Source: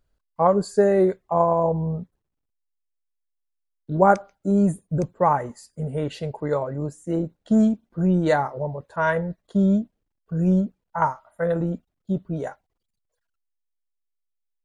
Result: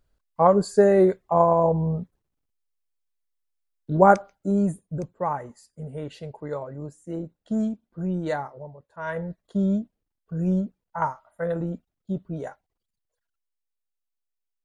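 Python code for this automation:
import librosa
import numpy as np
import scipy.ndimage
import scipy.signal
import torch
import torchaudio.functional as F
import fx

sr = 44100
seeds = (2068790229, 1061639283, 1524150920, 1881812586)

y = fx.gain(x, sr, db=fx.line((4.13, 1.0), (5.07, -7.5), (8.36, -7.5), (8.9, -16.0), (9.23, -4.0)))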